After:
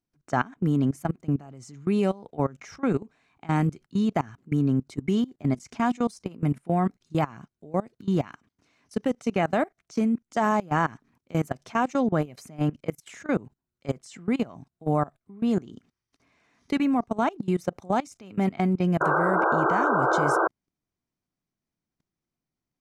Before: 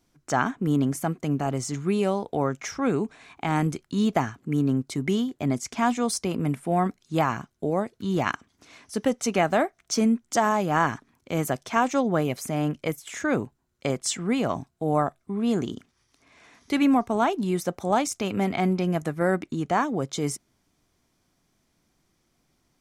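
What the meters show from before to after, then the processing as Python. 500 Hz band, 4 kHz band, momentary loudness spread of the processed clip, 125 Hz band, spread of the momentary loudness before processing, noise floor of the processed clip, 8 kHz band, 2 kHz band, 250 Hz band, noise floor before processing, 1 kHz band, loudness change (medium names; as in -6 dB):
-1.5 dB, -8.0 dB, 9 LU, +0.5 dB, 7 LU, under -85 dBFS, -13.5 dB, +0.5 dB, -0.5 dB, -71 dBFS, -0.5 dB, -0.5 dB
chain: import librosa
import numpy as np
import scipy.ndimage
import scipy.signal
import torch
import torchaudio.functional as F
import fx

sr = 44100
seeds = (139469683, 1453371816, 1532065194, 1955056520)

y = fx.spec_paint(x, sr, seeds[0], shape='noise', start_s=19.0, length_s=1.48, low_hz=310.0, high_hz=1600.0, level_db=-19.0)
y = fx.peak_eq(y, sr, hz=160.0, db=4.5, octaves=1.6)
y = fx.level_steps(y, sr, step_db=22)
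y = fx.high_shelf(y, sr, hz=9000.0, db=-9.5)
y = fx.notch(y, sr, hz=3400.0, q=17.0)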